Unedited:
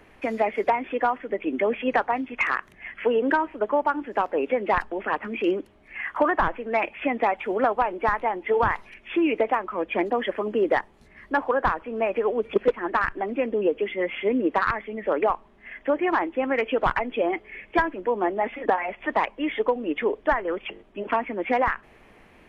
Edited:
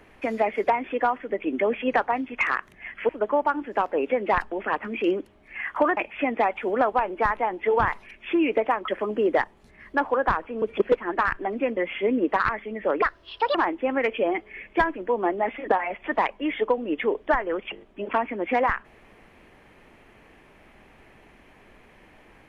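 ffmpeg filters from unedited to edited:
-filter_complex "[0:a]asplit=9[a][b][c][d][e][f][g][h][i];[a]atrim=end=3.092[j];[b]atrim=start=3.488:end=6.372[k];[c]atrim=start=6.798:end=9.712[l];[d]atrim=start=10.248:end=11.992[m];[e]atrim=start=12.378:end=13.532[n];[f]atrim=start=13.988:end=15.244[o];[g]atrim=start=15.24:end=16.09,asetpts=PTS-STARTPTS,asetrate=71001,aresample=44100[p];[h]atrim=start=16.086:end=16.722[q];[i]atrim=start=17.158[r];[j][k]acrossfade=d=0.004:c1=hsin:c2=hsin[s];[s][l]acrossfade=d=0.004:c1=hsin:c2=hsin[t];[t][m]acrossfade=d=0.004:c1=hsin:c2=hsin[u];[u][n]acrossfade=d=0.004:c1=hsin:c2=hsin[v];[v][o]acrossfade=d=0.004:c1=hsin:c2=hsin[w];[w][p]acrossfade=d=0.004:c1=hsin:c2=hsin[x];[x][q]acrossfade=d=0.004:c1=hsin:c2=hsin[y];[y][r]acrossfade=d=0.004:c1=hsin:c2=hsin"

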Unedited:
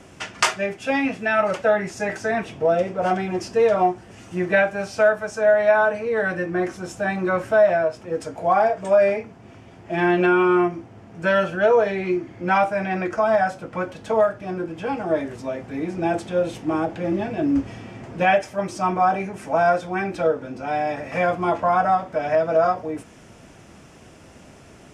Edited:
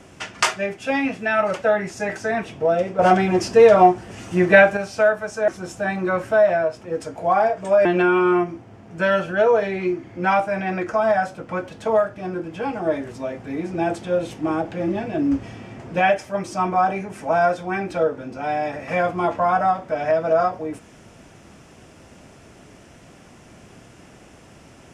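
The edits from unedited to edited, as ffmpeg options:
-filter_complex "[0:a]asplit=5[a][b][c][d][e];[a]atrim=end=2.992[f];[b]atrim=start=2.988:end=4.772,asetpts=PTS-STARTPTS,volume=6.5dB[g];[c]atrim=start=4.768:end=5.482[h];[d]atrim=start=6.678:end=9.052[i];[e]atrim=start=10.088[j];[f][g]acrossfade=d=0.004:c1=hsin:c2=hsin[k];[k][h]acrossfade=d=0.004:c1=hsin:c2=hsin[l];[l][i]acrossfade=d=0.004:c1=hsin:c2=hsin[m];[m][j]acrossfade=d=0.004:c1=hsin:c2=hsin"

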